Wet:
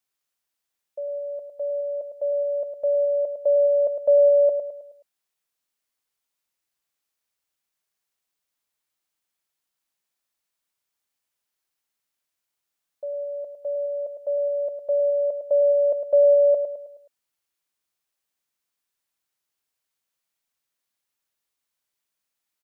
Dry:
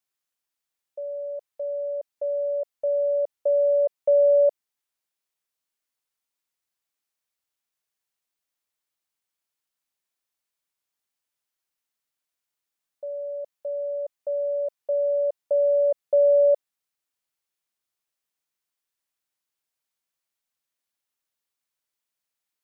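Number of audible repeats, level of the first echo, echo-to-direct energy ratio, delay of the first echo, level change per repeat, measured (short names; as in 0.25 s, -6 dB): 4, -8.0 dB, -7.0 dB, 0.106 s, -7.5 dB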